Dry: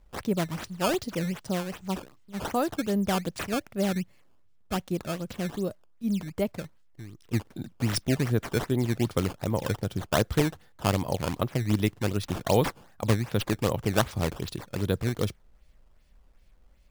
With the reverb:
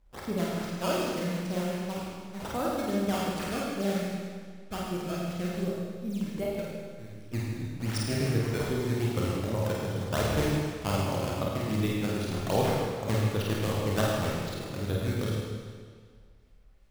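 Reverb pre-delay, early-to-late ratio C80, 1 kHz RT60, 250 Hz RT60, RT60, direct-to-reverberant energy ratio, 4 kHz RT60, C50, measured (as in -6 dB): 28 ms, 0.0 dB, 1.8 s, 1.8 s, 1.8 s, -5.0 dB, 1.7 s, -2.5 dB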